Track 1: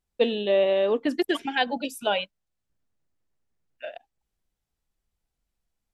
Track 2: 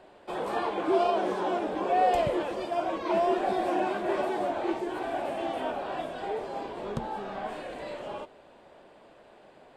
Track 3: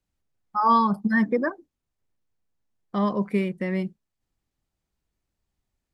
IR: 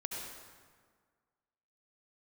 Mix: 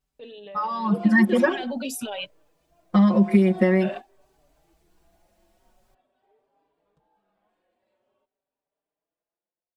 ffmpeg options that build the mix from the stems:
-filter_complex "[0:a]acompressor=threshold=-30dB:ratio=4,alimiter=level_in=11.5dB:limit=-24dB:level=0:latency=1:release=15,volume=-11.5dB,volume=2.5dB[link_01];[1:a]volume=-18dB[link_02];[2:a]aecho=1:1:5.4:0.82,volume=-1.5dB,asplit=2[link_03][link_04];[link_04]apad=whole_len=430612[link_05];[link_02][link_05]sidechaingate=range=-28dB:threshold=-40dB:ratio=16:detection=peak[link_06];[link_06][link_03]amix=inputs=2:normalize=0,acompressor=threshold=-25dB:ratio=5,volume=0dB[link_07];[link_01][link_07]amix=inputs=2:normalize=0,dynaudnorm=framelen=340:gausssize=5:maxgain=13dB,asplit=2[link_08][link_09];[link_09]adelay=4.7,afreqshift=0.47[link_10];[link_08][link_10]amix=inputs=2:normalize=1"

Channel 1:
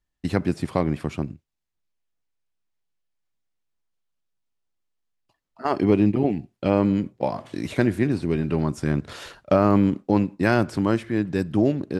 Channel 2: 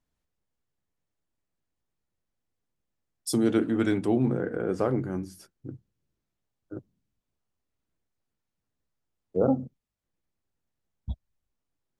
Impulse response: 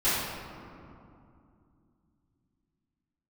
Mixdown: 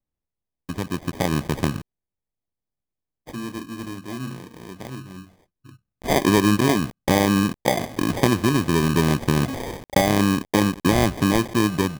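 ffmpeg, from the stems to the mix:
-filter_complex "[0:a]acompressor=threshold=-28dB:ratio=2.5,acrusher=bits=7:mix=0:aa=0.000001,dynaudnorm=framelen=120:gausssize=11:maxgain=11.5dB,adelay=450,volume=0dB[link_01];[1:a]aecho=1:1:1:0.63,volume=-8.5dB[link_02];[link_01][link_02]amix=inputs=2:normalize=0,acrusher=samples=32:mix=1:aa=0.000001"

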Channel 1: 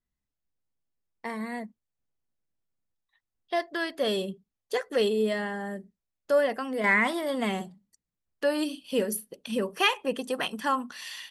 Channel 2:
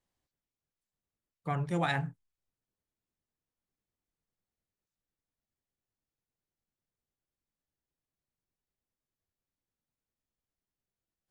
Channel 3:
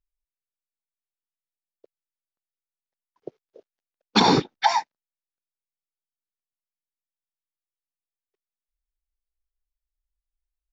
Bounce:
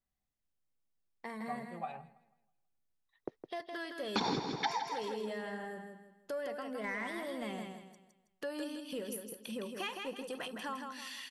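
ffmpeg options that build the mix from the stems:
ffmpeg -i stem1.wav -i stem2.wav -i stem3.wav -filter_complex "[0:a]acompressor=threshold=-40dB:ratio=2,asoftclip=type=tanh:threshold=-24dB,volume=-4dB,asplit=2[link_01][link_02];[link_02]volume=-5.5dB[link_03];[1:a]asplit=3[link_04][link_05][link_06];[link_04]bandpass=frequency=730:width_type=q:width=8,volume=0dB[link_07];[link_05]bandpass=frequency=1090:width_type=q:width=8,volume=-6dB[link_08];[link_06]bandpass=frequency=2440:width_type=q:width=8,volume=-9dB[link_09];[link_07][link_08][link_09]amix=inputs=3:normalize=0,lowshelf=frequency=430:gain=11.5,aecho=1:1:5.1:0.81,volume=-6.5dB,asplit=2[link_10][link_11];[link_11]volume=-21dB[link_12];[2:a]agate=range=-27dB:threshold=-41dB:ratio=16:detection=peak,volume=-3dB,asplit=2[link_13][link_14];[link_14]volume=-9.5dB[link_15];[link_03][link_12][link_15]amix=inputs=3:normalize=0,aecho=0:1:162|324|486|648|810:1|0.35|0.122|0.0429|0.015[link_16];[link_01][link_10][link_13][link_16]amix=inputs=4:normalize=0,acompressor=threshold=-33dB:ratio=4" out.wav

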